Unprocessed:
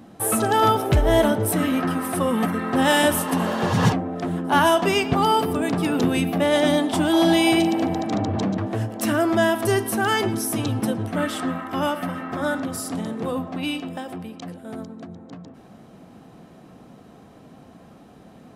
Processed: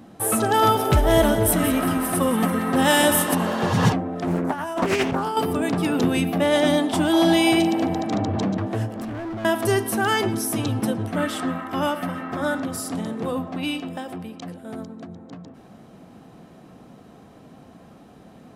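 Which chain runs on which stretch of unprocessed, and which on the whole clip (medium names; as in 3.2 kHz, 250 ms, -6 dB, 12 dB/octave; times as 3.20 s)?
0.54–3.35 s: treble shelf 6.6 kHz +6 dB + two-band feedback delay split 1.9 kHz, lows 249 ms, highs 180 ms, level -10 dB
4.27–5.37 s: peaking EQ 3.5 kHz -9 dB 0.61 oct + compressor with a negative ratio -22 dBFS, ratio -0.5 + loudspeaker Doppler distortion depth 0.53 ms
8.96–9.45 s: RIAA curve playback + compression 12:1, threshold -22 dBFS + overload inside the chain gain 28.5 dB
whole clip: none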